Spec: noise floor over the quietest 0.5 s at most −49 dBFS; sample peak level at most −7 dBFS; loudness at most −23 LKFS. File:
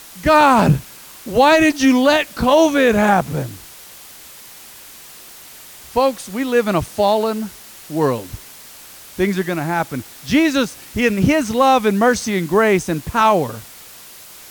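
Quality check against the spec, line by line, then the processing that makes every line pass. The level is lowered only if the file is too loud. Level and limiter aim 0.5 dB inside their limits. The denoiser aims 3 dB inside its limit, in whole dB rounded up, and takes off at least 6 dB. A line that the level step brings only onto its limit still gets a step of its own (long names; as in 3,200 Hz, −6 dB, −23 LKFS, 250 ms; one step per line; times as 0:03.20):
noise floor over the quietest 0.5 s −40 dBFS: out of spec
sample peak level −3.0 dBFS: out of spec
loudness −16.5 LKFS: out of spec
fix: broadband denoise 6 dB, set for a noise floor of −40 dBFS
level −7 dB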